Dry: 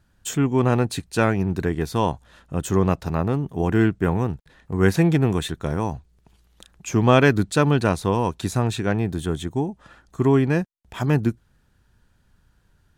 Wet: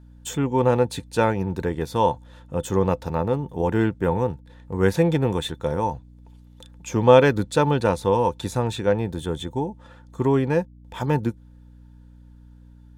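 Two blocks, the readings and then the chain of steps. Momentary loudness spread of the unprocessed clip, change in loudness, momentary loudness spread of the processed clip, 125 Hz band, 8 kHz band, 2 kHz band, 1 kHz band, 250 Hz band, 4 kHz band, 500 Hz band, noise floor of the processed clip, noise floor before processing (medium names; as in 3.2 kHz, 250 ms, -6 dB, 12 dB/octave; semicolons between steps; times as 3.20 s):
11 LU, -0.5 dB, 11 LU, -3.5 dB, -3.5 dB, -3.5 dB, +2.0 dB, -3.0 dB, -1.0 dB, +2.5 dB, -48 dBFS, -63 dBFS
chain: small resonant body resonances 510/890/3500 Hz, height 14 dB, ringing for 70 ms; hum 60 Hz, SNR 24 dB; trim -3.5 dB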